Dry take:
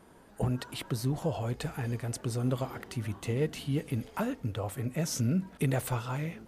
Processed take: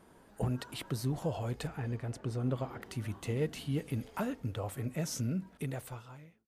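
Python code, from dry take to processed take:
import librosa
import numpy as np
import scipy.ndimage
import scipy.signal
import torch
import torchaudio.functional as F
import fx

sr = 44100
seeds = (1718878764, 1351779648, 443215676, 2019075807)

y = fx.fade_out_tail(x, sr, length_s=1.6)
y = fx.lowpass(y, sr, hz=2400.0, slope=6, at=(1.67, 2.82))
y = F.gain(torch.from_numpy(y), -3.0).numpy()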